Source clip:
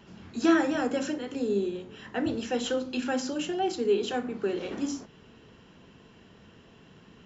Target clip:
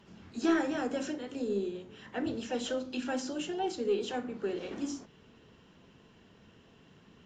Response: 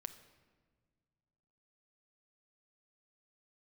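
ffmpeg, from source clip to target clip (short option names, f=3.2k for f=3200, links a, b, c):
-filter_complex "[0:a]aeval=exprs='0.266*(cos(1*acos(clip(val(0)/0.266,-1,1)))-cos(1*PI/2))+0.00299*(cos(4*acos(clip(val(0)/0.266,-1,1)))-cos(4*PI/2))':c=same,asplit=2[a][b];[b]asoftclip=type=hard:threshold=-21dB,volume=-11.5dB[c];[a][c]amix=inputs=2:normalize=0,asplit=2[d][e];[e]asetrate=52444,aresample=44100,atempo=0.840896,volume=-16dB[f];[d][f]amix=inputs=2:normalize=0,volume=-7dB" -ar 44100 -c:a libvorbis -b:a 64k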